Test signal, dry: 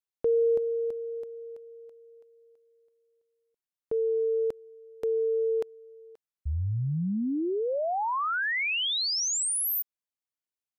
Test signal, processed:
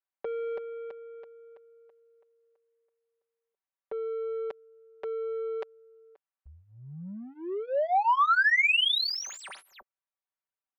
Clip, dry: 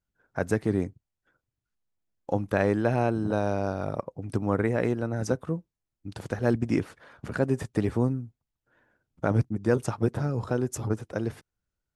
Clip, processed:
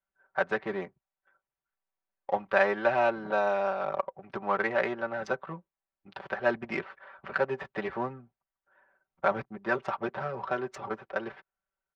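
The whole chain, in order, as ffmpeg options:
-filter_complex "[0:a]adynamicsmooth=sensitivity=6:basefreq=2k,acrossover=split=590 4100:gain=0.0891 1 0.0708[a][b][c];[a][b][c]amix=inputs=3:normalize=0,aecho=1:1:5.2:0.87,volume=4dB"

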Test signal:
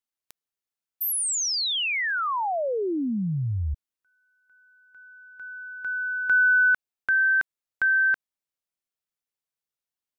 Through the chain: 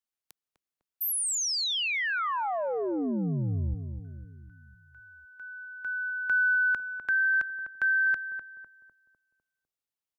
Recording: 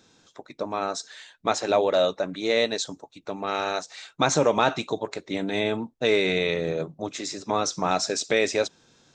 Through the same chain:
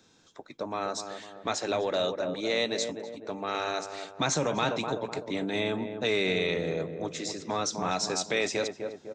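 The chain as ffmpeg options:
-filter_complex "[0:a]asplit=2[a][b];[b]adelay=251,lowpass=f=1.1k:p=1,volume=-8dB,asplit=2[c][d];[d]adelay=251,lowpass=f=1.1k:p=1,volume=0.52,asplit=2[e][f];[f]adelay=251,lowpass=f=1.1k:p=1,volume=0.52,asplit=2[g][h];[h]adelay=251,lowpass=f=1.1k:p=1,volume=0.52,asplit=2[i][j];[j]adelay=251,lowpass=f=1.1k:p=1,volume=0.52,asplit=2[k][l];[l]adelay=251,lowpass=f=1.1k:p=1,volume=0.52[m];[a][c][e][g][i][k][m]amix=inputs=7:normalize=0,acrossover=split=220|1800[n][o][p];[o]acompressor=threshold=-24dB:ratio=4:attack=1.6:release=21:knee=2.83:detection=peak[q];[n][q][p]amix=inputs=3:normalize=0,volume=-3dB"

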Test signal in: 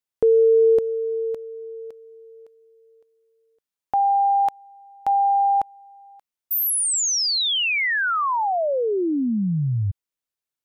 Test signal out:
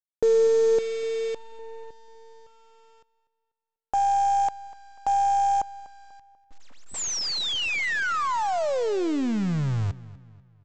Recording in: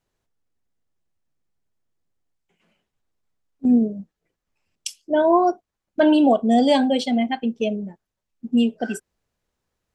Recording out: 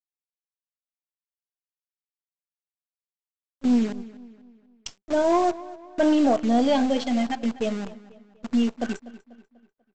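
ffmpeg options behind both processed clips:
-filter_complex "[0:a]aeval=exprs='if(lt(val(0),0),0.708*val(0),val(0))':c=same,aresample=16000,acrusher=bits=6:dc=4:mix=0:aa=0.000001,aresample=44100,highshelf=f=2.6k:g=-4.5,acontrast=83,asplit=2[a][b];[b]adelay=245,lowpass=f=4.8k:p=1,volume=-18dB,asplit=2[c][d];[d]adelay=245,lowpass=f=4.8k:p=1,volume=0.44,asplit=2[e][f];[f]adelay=245,lowpass=f=4.8k:p=1,volume=0.44,asplit=2[g][h];[h]adelay=245,lowpass=f=4.8k:p=1,volume=0.44[i];[a][c][e][g][i]amix=inputs=5:normalize=0,volume=-8.5dB"

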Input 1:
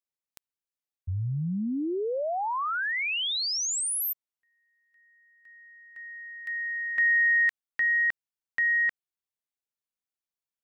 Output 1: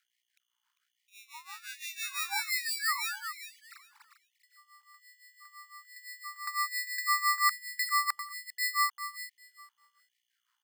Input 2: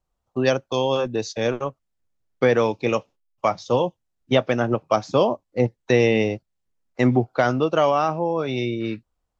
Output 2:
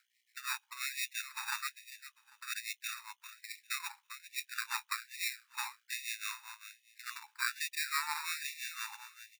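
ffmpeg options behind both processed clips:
-af "areverse,acompressor=threshold=-29dB:ratio=20:attack=83:release=154:knee=1:detection=rms,areverse,alimiter=limit=-24dB:level=0:latency=1:release=68,acompressor=mode=upward:threshold=-46dB:ratio=2.5:attack=0.62:release=220:knee=2.83:detection=peak,aeval=exprs='0.0631*(cos(1*acos(clip(val(0)/0.0631,-1,1)))-cos(1*PI/2))+0.00708*(cos(3*acos(clip(val(0)/0.0631,-1,1)))-cos(3*PI/2))+0.0126*(cos(6*acos(clip(val(0)/0.0631,-1,1)))-cos(6*PI/2))+0.01*(cos(8*acos(clip(val(0)/0.0631,-1,1)))-cos(8*PI/2))':c=same,highpass=f=320:t=q:w=0.5412,highpass=f=320:t=q:w=1.307,lowpass=f=2.8k:t=q:w=0.5176,lowpass=f=2.8k:t=q:w=0.7071,lowpass=f=2.8k:t=q:w=1.932,afreqshift=100,tremolo=f=5.9:d=0.86,aeval=exprs='val(0)+0.000501*(sin(2*PI*60*n/s)+sin(2*PI*2*60*n/s)/2+sin(2*PI*3*60*n/s)/3+sin(2*PI*4*60*n/s)/4+sin(2*PI*5*60*n/s)/5)':c=same,acrusher=samples=14:mix=1:aa=0.000001,aecho=1:1:398|796|1194:0.282|0.0535|0.0102,afftfilt=real='re*gte(b*sr/1024,790*pow(1800/790,0.5+0.5*sin(2*PI*1.2*pts/sr)))':imag='im*gte(b*sr/1024,790*pow(1800/790,0.5+0.5*sin(2*PI*1.2*pts/sr)))':win_size=1024:overlap=0.75,volume=6.5dB"

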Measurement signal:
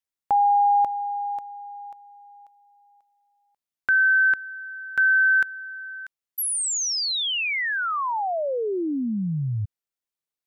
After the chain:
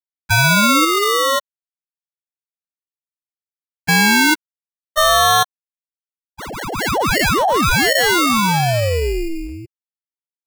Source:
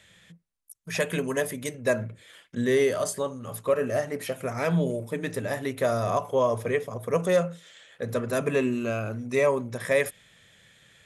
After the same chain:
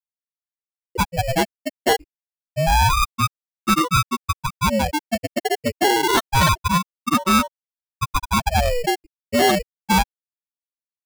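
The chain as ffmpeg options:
-filter_complex "[0:a]afftfilt=real='re*gte(hypot(re,im),0.282)':imag='im*gte(hypot(re,im),0.282)':win_size=1024:overlap=0.75,acrossover=split=150 4800:gain=0.1 1 0.126[a][b][c];[a][b][c]amix=inputs=3:normalize=0,asplit=2[d][e];[e]highpass=f=720:p=1,volume=19dB,asoftclip=type=tanh:threshold=-13.5dB[f];[d][f]amix=inputs=2:normalize=0,lowpass=f=6.1k:p=1,volume=-6dB,asplit=2[g][h];[h]alimiter=limit=-21dB:level=0:latency=1:release=63,volume=-1.5dB[i];[g][i]amix=inputs=2:normalize=0,acrusher=samples=18:mix=1:aa=0.000001,adynamicequalizer=threshold=0.0316:dfrequency=3600:dqfactor=1.6:tfrequency=3600:tqfactor=1.6:attack=5:release=100:ratio=0.417:range=1.5:mode=boostabove:tftype=bell,aeval=exprs='val(0)*sin(2*PI*460*n/s+460*0.65/0.27*sin(2*PI*0.27*n/s))':c=same,volume=3.5dB"

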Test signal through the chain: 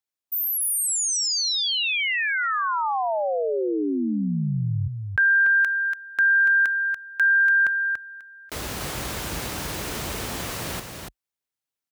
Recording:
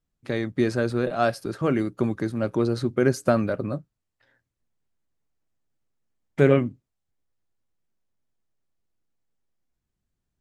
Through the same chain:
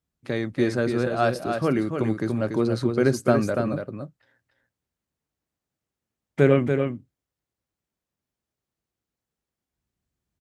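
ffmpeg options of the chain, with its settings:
-filter_complex "[0:a]highpass=f=44:w=0.5412,highpass=f=44:w=1.3066,asplit=2[a][b];[b]aecho=0:1:287:0.501[c];[a][c]amix=inputs=2:normalize=0"

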